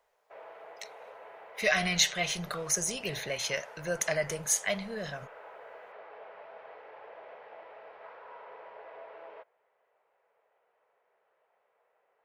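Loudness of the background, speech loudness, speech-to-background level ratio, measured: −49.0 LKFS, −30.0 LKFS, 19.0 dB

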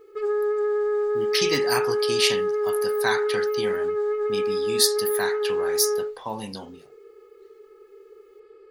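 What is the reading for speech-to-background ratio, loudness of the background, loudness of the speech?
−1.5 dB, −25.0 LKFS, −26.5 LKFS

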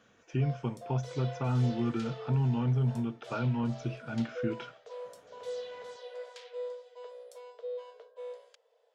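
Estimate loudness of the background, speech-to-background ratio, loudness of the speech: −44.5 LKFS, 12.5 dB, −32.0 LKFS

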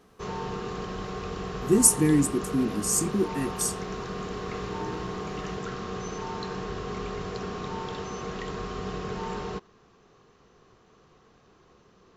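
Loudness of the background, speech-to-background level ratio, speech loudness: −34.5 LKFS, 11.0 dB, −23.5 LKFS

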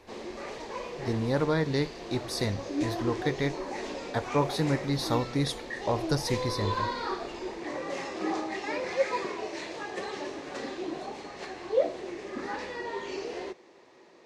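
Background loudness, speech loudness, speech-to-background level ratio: −35.0 LKFS, −31.0 LKFS, 4.0 dB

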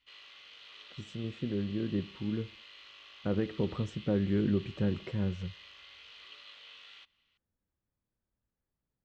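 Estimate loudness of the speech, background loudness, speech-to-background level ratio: −34.0 LKFS, −50.5 LKFS, 16.5 dB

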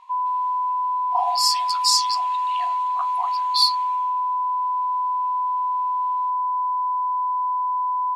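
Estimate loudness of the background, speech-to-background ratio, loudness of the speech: −23.0 LKFS, 1.0 dB, −22.0 LKFS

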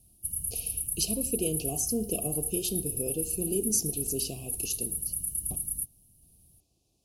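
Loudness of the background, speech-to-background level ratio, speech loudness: −31.0 LKFS, −1.5 dB, −32.5 LKFS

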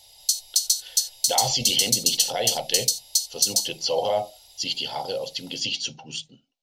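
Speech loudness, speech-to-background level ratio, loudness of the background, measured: −27.0 LKFS, −5.0 dB, −22.0 LKFS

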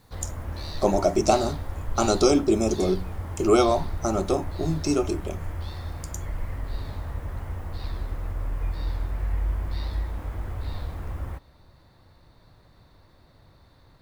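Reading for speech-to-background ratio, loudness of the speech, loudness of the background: 10.0 dB, −24.0 LKFS, −34.0 LKFS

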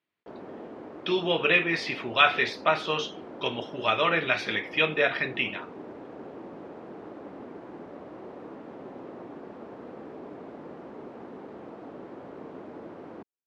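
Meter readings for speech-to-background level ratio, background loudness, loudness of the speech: 17.5 dB, −43.0 LKFS, −25.5 LKFS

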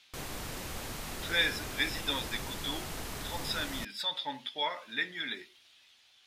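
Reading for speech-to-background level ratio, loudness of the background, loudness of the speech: 6.0 dB, −40.0 LKFS, −34.0 LKFS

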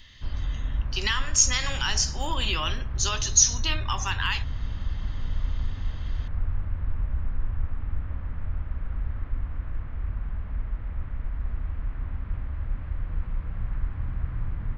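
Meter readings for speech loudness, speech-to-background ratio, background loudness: −24.5 LKFS, 9.5 dB, −34.0 LKFS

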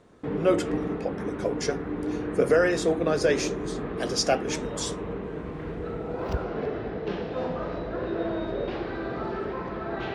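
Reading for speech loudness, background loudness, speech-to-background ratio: −27.5 LKFS, −32.0 LKFS, 4.5 dB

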